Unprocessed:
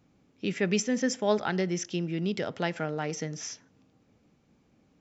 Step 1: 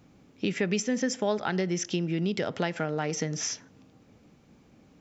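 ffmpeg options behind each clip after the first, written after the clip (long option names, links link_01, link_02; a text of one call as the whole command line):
ffmpeg -i in.wav -af "acompressor=threshold=-34dB:ratio=3,volume=7.5dB" out.wav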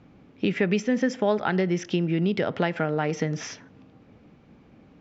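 ffmpeg -i in.wav -af "lowpass=3100,volume=4.5dB" out.wav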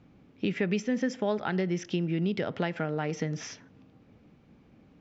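ffmpeg -i in.wav -af "equalizer=frequency=900:width=0.38:gain=-3,volume=-3.5dB" out.wav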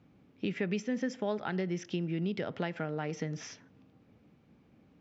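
ffmpeg -i in.wav -af "highpass=56,volume=-4.5dB" out.wav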